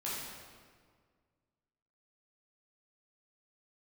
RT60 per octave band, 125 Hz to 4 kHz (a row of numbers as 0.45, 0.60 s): 2.3, 2.1, 1.9, 1.7, 1.5, 1.2 s